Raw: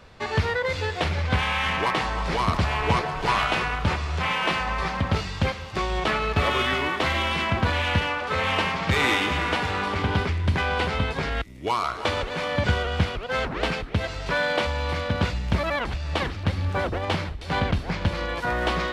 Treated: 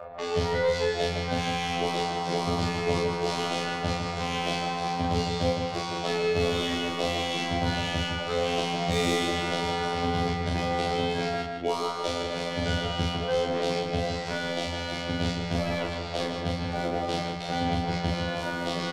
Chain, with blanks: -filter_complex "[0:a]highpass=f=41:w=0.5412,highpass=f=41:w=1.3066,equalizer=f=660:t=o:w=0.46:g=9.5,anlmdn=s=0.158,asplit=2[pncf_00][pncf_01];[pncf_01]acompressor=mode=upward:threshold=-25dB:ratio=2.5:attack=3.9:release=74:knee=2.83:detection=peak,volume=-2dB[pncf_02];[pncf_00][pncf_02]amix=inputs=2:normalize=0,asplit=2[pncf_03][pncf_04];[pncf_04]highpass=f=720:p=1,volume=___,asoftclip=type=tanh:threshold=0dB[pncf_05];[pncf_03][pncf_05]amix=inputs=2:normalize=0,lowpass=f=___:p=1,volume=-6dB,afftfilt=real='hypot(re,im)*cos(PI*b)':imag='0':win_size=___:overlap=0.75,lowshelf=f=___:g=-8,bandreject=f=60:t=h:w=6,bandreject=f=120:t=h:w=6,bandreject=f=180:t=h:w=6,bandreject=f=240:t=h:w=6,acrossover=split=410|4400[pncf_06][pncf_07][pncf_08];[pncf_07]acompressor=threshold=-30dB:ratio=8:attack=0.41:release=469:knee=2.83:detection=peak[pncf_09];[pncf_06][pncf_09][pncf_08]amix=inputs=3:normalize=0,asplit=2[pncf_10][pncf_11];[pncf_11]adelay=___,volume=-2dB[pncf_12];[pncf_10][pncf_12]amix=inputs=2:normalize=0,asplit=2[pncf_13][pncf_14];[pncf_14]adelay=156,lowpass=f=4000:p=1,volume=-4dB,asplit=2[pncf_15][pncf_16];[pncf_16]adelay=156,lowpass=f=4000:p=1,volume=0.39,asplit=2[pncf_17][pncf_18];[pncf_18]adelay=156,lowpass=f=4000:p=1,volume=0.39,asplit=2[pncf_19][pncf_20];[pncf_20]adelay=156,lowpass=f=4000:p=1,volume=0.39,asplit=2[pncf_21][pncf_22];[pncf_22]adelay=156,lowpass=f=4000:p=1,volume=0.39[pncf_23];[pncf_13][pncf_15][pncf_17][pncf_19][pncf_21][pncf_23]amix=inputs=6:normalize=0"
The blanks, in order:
13dB, 2400, 2048, 160, 39